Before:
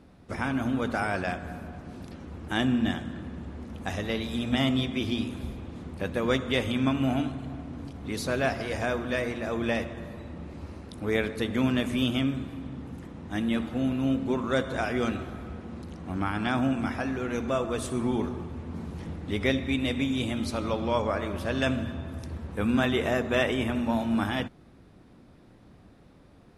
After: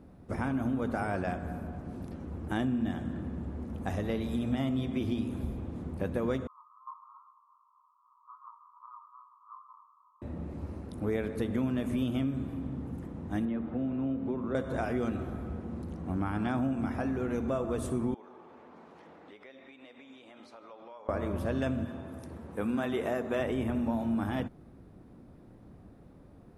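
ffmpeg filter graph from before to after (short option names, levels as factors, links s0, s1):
-filter_complex "[0:a]asettb=1/sr,asplit=3[s0][s1][s2];[s0]atrim=end=6.474[s3];[s1]atrim=start=6.47:end=10.22,asetpts=PTS-STARTPTS,afade=t=in:d=0.004:c=qsin,afade=t=out:st=3.746:d=0.004:c=qsin,asuperpass=centerf=1100:order=12:qfactor=3.3,flanger=delay=17:depth=3.2:speed=2.5[s4];[s2]atrim=start=10.216[s5];[s3][s4]acrossfade=d=0.004:c1=hsin:c2=qsin[s6];[s6][s5]acrossfade=d=0.004:c1=qsin:c2=hsin,asettb=1/sr,asplit=3[s7][s8][s9];[s7]atrim=end=13.454[s10];[s8]atrim=start=13.45:end=14.55,asetpts=PTS-STARTPTS,afade=t=in:d=0.004:c=qsin,afade=t=out:st=1.096:d=0.004:c=qsin,lowpass=3000,acrossover=split=160|450|2300[s11][s12][s13][s14];[s11]acompressor=threshold=0.00447:ratio=3[s15];[s12]acompressor=threshold=0.0224:ratio=3[s16];[s13]acompressor=threshold=0.00708:ratio=3[s17];[s14]acompressor=threshold=0.00112:ratio=3[s18];[s15][s16][s17][s18]amix=inputs=4:normalize=0[s19];[s9]atrim=start=14.546[s20];[s10][s19]acrossfade=d=0.004:c1=hsin:c2=qsin[s21];[s21][s20]acrossfade=d=0.004:c1=qsin:c2=hsin,asettb=1/sr,asplit=3[s22][s23][s24];[s22]atrim=end=18.144[s25];[s23]atrim=start=18.14:end=21.09,asetpts=PTS-STARTPTS,afade=t=in:d=0.004:c=qsin,afade=t=out:st=2.946:d=0.004:c=qsin,highpass=670,lowpass=4500,acompressor=threshold=0.00447:ratio=4:attack=3.2:release=140:knee=1:detection=peak[s26];[s24]atrim=start=21.086[s27];[s25][s26]acrossfade=d=0.004:c1=hsin:c2=qsin[s28];[s28][s27]acrossfade=d=0.004:c1=qsin:c2=hsin,asettb=1/sr,asplit=3[s29][s30][s31];[s29]atrim=end=21.854[s32];[s30]atrim=start=21.85:end=23.39,asetpts=PTS-STARTPTS,afade=t=in:d=0.004:c=qsin,afade=t=out:st=1.536:d=0.004:c=qsin,highpass=f=330:p=1,equalizer=f=9600:t=o:w=0.21:g=3[s33];[s31]atrim=start=23.386[s34];[s32][s33]acrossfade=d=0.004:c1=hsin:c2=qsin[s35];[s35][s34]acrossfade=d=0.004:c1=qsin:c2=hsin,equalizer=f=3900:t=o:w=2.9:g=-12,acompressor=threshold=0.0355:ratio=4,volume=1.19"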